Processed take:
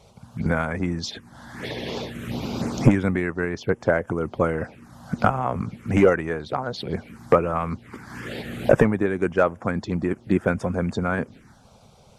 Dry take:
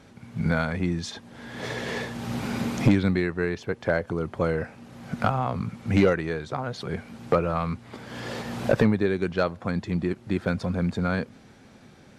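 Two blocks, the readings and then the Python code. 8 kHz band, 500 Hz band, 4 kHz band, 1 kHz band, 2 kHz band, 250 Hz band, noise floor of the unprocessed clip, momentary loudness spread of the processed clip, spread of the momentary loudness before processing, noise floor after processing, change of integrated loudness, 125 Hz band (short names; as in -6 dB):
n/a, +4.0 dB, +1.0 dB, +4.0 dB, +2.5 dB, +1.5 dB, -52 dBFS, 15 LU, 14 LU, -53 dBFS, +2.5 dB, +1.0 dB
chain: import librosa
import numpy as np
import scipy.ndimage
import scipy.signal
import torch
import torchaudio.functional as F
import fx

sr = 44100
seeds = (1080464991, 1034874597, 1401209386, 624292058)

y = fx.hpss(x, sr, part='harmonic', gain_db=-9)
y = fx.env_phaser(y, sr, low_hz=250.0, high_hz=4200.0, full_db=-28.0)
y = F.gain(torch.from_numpy(y), 7.0).numpy()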